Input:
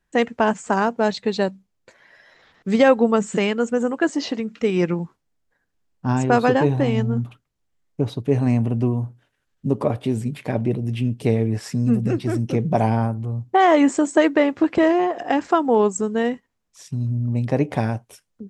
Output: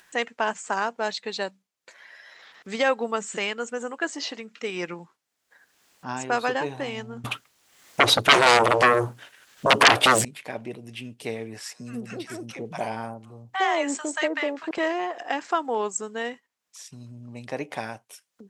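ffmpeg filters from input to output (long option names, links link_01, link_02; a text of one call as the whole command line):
ffmpeg -i in.wav -filter_complex "[0:a]asettb=1/sr,asplit=3[link_01][link_02][link_03];[link_01]atrim=end=7.244[link_04];[link_02]atrim=start=7.24:end=10.25,asetpts=PTS-STARTPTS,afade=type=in:duration=0.004:curve=qsin,afade=type=out:start_time=3.006:duration=0.004:curve=qsin,aeval=exprs='0.531*sin(PI/2*8.91*val(0)/0.531)':channel_layout=same[link_05];[link_03]atrim=start=10.246[link_06];[link_04][link_05]acrossfade=duration=0.004:curve1=hsin:curve2=qsin[link_07];[link_07][link_06]acrossfade=duration=0.004:curve1=qsin:curve2=hsin,asettb=1/sr,asplit=3[link_08][link_09][link_10];[link_08]atrim=end=11.634[link_11];[link_09]atrim=start=11.63:end=14.71,asetpts=PTS-STARTPTS,afade=type=in:duration=0.004:curve=qsin,afade=type=out:start_time=3.076:duration=0.004:curve=qsin,acrossover=split=890[link_12][link_13];[link_12]adelay=60[link_14];[link_14][link_13]amix=inputs=2:normalize=0,atrim=end_sample=135828[link_15];[link_10]atrim=start=14.706[link_16];[link_11][link_15]acrossfade=duration=0.004:curve1=hsin:curve2=qsin[link_17];[link_17][link_16]acrossfade=duration=0.004:curve1=qsin:curve2=hsin,highpass=frequency=1400:poles=1,acompressor=mode=upward:threshold=-40dB:ratio=2.5" out.wav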